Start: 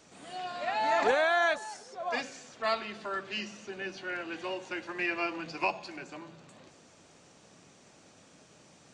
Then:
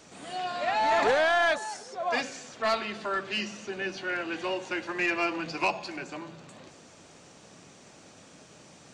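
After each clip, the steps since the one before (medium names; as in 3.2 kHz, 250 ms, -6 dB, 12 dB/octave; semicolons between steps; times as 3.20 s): saturation -23.5 dBFS, distortion -13 dB; trim +5.5 dB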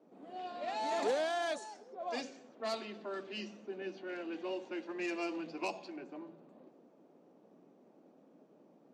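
level-controlled noise filter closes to 990 Hz, open at -21.5 dBFS; high-pass 230 Hz 24 dB/octave; peaking EQ 1.6 kHz -14.5 dB 2.5 oct; trim -2 dB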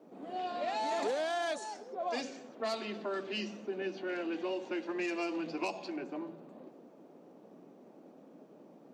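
compression 3:1, threshold -40 dBFS, peak gain reduction 9 dB; trim +7 dB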